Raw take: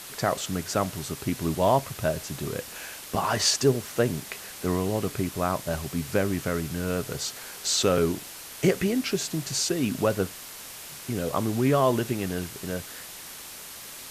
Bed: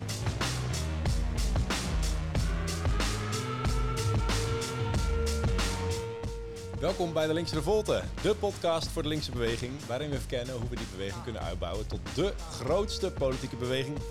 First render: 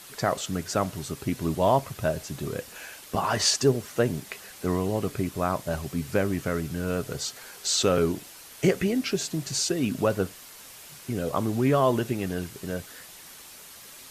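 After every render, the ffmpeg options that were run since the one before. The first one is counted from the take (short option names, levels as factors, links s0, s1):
-af "afftdn=nr=6:nf=-42"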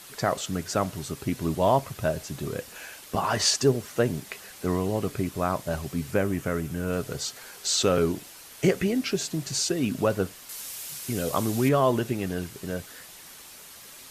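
-filter_complex "[0:a]asettb=1/sr,asplit=3[s0][s1][s2];[s0]atrim=end=6.114[s3];[s1]atrim=start=6.11:end=6.93,asetpts=PTS-STARTPTS,afade=t=in:d=0.004:c=qsin,afade=t=out:st=0.816:d=0.004:c=qsin,equalizer=f=4400:t=o:w=0.77:g=-5.5[s4];[s2]atrim=start=6.926[s5];[s3][s4]acrossfade=d=0.004:c1=hsin:c2=qsin[s6];[s6][s5]acrossfade=d=0.004:c1=qsin:c2=hsin,asettb=1/sr,asplit=3[s7][s8][s9];[s7]atrim=end=10.494[s10];[s8]atrim=start=10.49:end=11.69,asetpts=PTS-STARTPTS,afade=t=in:d=0.004:c=qsin,afade=t=out:st=1.196:d=0.004:c=qsin,highshelf=f=3200:g=10.5[s11];[s9]atrim=start=11.686[s12];[s10][s11]acrossfade=d=0.004:c1=hsin:c2=qsin[s13];[s13][s12]acrossfade=d=0.004:c1=qsin:c2=hsin"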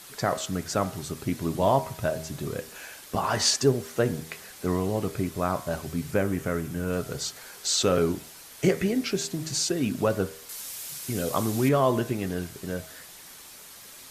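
-af "equalizer=f=2800:t=o:w=0.24:g=-2.5,bandreject=f=79.66:t=h:w=4,bandreject=f=159.32:t=h:w=4,bandreject=f=238.98:t=h:w=4,bandreject=f=318.64:t=h:w=4,bandreject=f=398.3:t=h:w=4,bandreject=f=477.96:t=h:w=4,bandreject=f=557.62:t=h:w=4,bandreject=f=637.28:t=h:w=4,bandreject=f=716.94:t=h:w=4,bandreject=f=796.6:t=h:w=4,bandreject=f=876.26:t=h:w=4,bandreject=f=955.92:t=h:w=4,bandreject=f=1035.58:t=h:w=4,bandreject=f=1115.24:t=h:w=4,bandreject=f=1194.9:t=h:w=4,bandreject=f=1274.56:t=h:w=4,bandreject=f=1354.22:t=h:w=4,bandreject=f=1433.88:t=h:w=4,bandreject=f=1513.54:t=h:w=4,bandreject=f=1593.2:t=h:w=4,bandreject=f=1672.86:t=h:w=4,bandreject=f=1752.52:t=h:w=4,bandreject=f=1832.18:t=h:w=4,bandreject=f=1911.84:t=h:w=4,bandreject=f=1991.5:t=h:w=4,bandreject=f=2071.16:t=h:w=4,bandreject=f=2150.82:t=h:w=4,bandreject=f=2230.48:t=h:w=4,bandreject=f=2310.14:t=h:w=4,bandreject=f=2389.8:t=h:w=4,bandreject=f=2469.46:t=h:w=4"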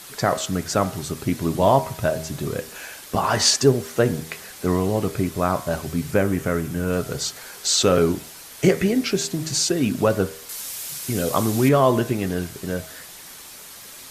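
-af "volume=1.88"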